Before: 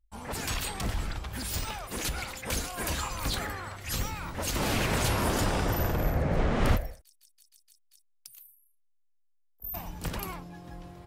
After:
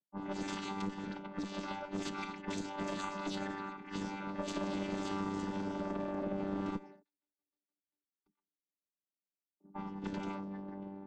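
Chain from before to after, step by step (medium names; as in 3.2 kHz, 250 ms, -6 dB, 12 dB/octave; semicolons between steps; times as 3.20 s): vocoder on a held chord bare fifth, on G3; compression 10:1, threshold -34 dBFS, peak gain reduction 11.5 dB; Chebyshev shaper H 2 -12 dB, 6 -26 dB, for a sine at -25 dBFS; level-controlled noise filter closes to 560 Hz, open at -33.5 dBFS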